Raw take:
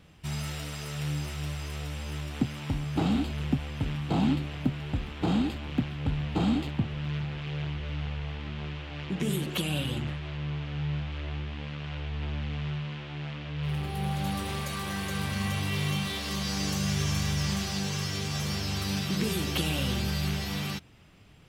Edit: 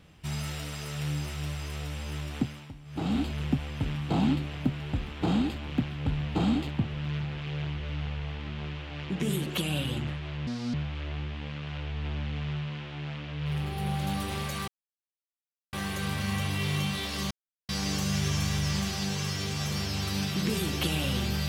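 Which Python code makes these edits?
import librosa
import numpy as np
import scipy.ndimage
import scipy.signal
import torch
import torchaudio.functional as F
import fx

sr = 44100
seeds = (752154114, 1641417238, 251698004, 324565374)

y = fx.edit(x, sr, fx.fade_down_up(start_s=2.36, length_s=0.85, db=-16.0, fade_s=0.37),
    fx.speed_span(start_s=10.47, length_s=0.44, speed=1.64),
    fx.insert_silence(at_s=14.85, length_s=1.05),
    fx.insert_silence(at_s=16.43, length_s=0.38), tone=tone)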